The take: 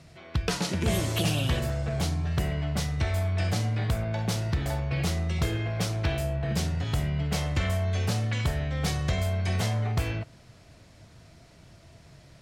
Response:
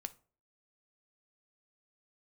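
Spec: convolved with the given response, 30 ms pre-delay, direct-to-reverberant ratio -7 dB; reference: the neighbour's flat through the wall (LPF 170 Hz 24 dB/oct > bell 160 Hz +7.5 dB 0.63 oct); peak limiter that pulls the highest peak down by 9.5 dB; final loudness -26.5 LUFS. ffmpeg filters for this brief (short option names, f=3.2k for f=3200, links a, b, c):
-filter_complex "[0:a]alimiter=limit=-23dB:level=0:latency=1,asplit=2[a][b];[1:a]atrim=start_sample=2205,adelay=30[c];[b][c]afir=irnorm=-1:irlink=0,volume=10dB[d];[a][d]amix=inputs=2:normalize=0,lowpass=f=170:w=0.5412,lowpass=f=170:w=1.3066,equalizer=f=160:t=o:w=0.63:g=7.5,volume=-2.5dB"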